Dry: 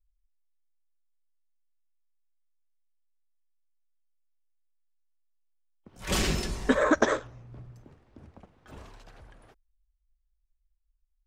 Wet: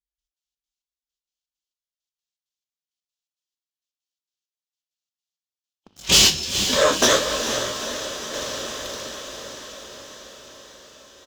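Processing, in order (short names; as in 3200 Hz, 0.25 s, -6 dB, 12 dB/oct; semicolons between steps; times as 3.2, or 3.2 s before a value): HPF 57 Hz; band shelf 4500 Hz +15.5 dB; sample leveller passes 3; step gate "..x.xx.xx." 165 bpm -12 dB; doubler 41 ms -10.5 dB; diffused feedback echo 0.459 s, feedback 66%, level -8 dB; 5.9–8.34 detuned doubles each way 24 cents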